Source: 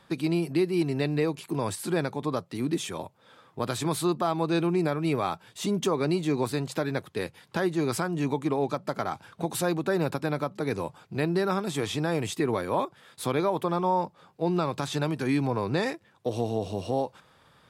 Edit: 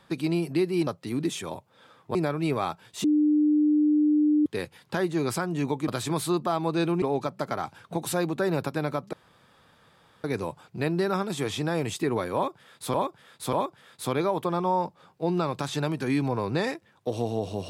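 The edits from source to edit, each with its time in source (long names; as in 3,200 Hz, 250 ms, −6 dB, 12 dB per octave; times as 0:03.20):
0:00.87–0:02.35: remove
0:03.63–0:04.77: move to 0:08.50
0:05.66–0:07.08: beep over 300 Hz −18 dBFS
0:10.61: splice in room tone 1.11 s
0:12.72–0:13.31: repeat, 3 plays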